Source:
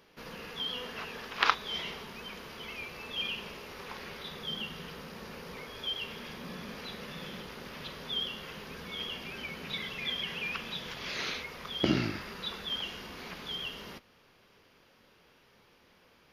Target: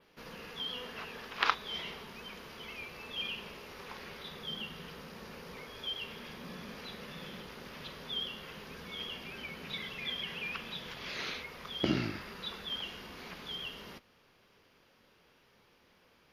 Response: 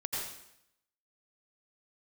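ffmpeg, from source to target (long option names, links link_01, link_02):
-af "adynamicequalizer=threshold=0.002:dfrequency=6200:dqfactor=1.8:tfrequency=6200:tqfactor=1.8:attack=5:release=100:ratio=0.375:range=1.5:mode=cutabove:tftype=bell,volume=-3dB"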